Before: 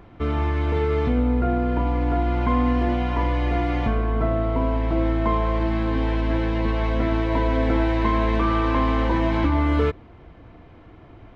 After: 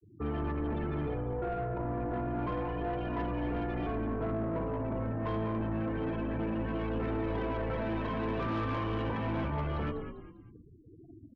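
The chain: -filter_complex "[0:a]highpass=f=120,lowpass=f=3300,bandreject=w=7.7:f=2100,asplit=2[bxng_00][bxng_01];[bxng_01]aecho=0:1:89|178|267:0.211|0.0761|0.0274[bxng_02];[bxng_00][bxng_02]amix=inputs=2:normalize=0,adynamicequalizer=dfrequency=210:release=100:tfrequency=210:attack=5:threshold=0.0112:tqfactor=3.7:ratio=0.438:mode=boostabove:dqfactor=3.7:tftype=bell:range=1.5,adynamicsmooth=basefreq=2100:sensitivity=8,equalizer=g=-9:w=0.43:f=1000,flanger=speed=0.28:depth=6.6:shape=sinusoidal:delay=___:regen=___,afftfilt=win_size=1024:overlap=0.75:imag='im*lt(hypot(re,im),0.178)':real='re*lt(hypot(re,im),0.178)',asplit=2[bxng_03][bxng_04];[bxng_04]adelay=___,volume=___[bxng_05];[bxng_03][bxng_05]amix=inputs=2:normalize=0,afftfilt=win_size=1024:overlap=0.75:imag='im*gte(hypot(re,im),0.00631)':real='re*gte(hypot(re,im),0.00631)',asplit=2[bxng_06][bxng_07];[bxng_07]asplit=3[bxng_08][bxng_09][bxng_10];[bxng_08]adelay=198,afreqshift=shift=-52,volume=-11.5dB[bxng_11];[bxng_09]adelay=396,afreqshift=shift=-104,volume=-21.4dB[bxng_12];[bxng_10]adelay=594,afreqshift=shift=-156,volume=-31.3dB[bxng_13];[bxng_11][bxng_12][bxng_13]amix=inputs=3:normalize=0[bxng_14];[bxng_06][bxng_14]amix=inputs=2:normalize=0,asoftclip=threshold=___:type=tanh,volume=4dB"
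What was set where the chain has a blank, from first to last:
2.2, 47, 27, -14dB, -32dB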